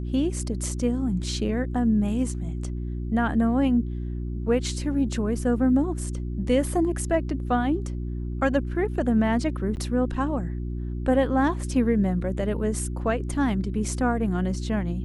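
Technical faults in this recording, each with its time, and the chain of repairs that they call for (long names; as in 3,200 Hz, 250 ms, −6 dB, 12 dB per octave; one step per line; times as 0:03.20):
mains hum 60 Hz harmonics 6 −30 dBFS
0:09.76–0:09.77: drop-out 9.8 ms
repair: hum removal 60 Hz, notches 6
repair the gap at 0:09.76, 9.8 ms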